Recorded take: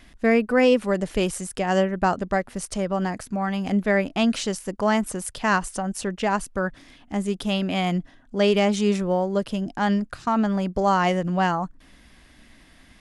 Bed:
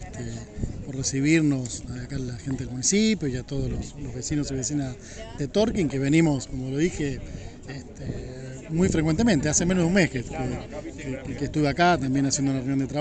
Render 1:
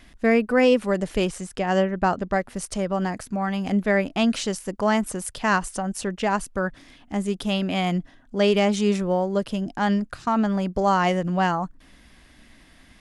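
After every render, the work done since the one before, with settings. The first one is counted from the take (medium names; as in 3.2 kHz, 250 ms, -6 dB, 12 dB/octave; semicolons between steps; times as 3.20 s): 1.25–2.36 s: distance through air 51 m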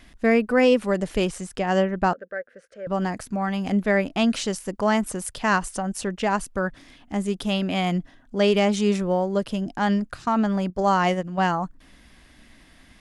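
2.13–2.87 s: two resonant band-passes 910 Hz, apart 1.6 oct; 10.70–11.48 s: gate -24 dBFS, range -8 dB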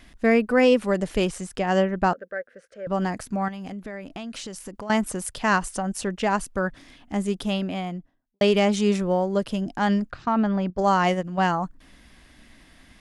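3.48–4.90 s: compression 8:1, threshold -32 dBFS; 7.28–8.41 s: studio fade out; 10.10–10.78 s: distance through air 160 m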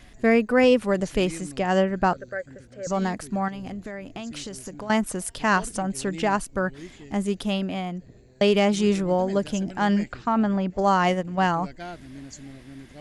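add bed -18 dB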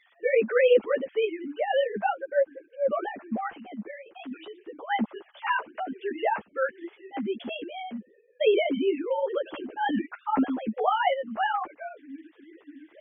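formants replaced by sine waves; three-phase chorus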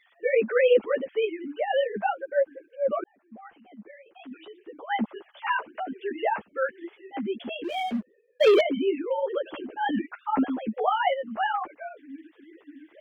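3.04–5.06 s: fade in; 7.64–8.61 s: waveshaping leveller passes 2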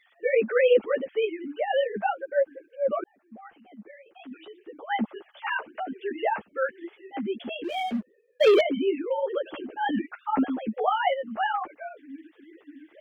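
band-stop 1 kHz, Q 16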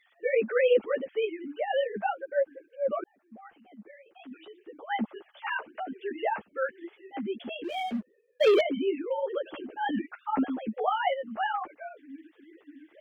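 trim -3 dB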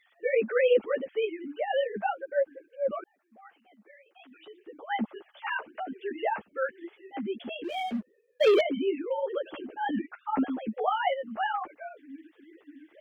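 2.91–4.47 s: high-pass 840 Hz 6 dB/octave; 9.75–10.36 s: treble shelf 3.5 kHz -7.5 dB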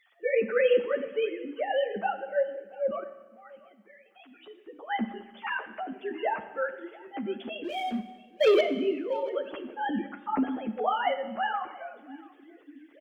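delay 684 ms -22.5 dB; Schroeder reverb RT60 1.2 s, combs from 31 ms, DRR 11 dB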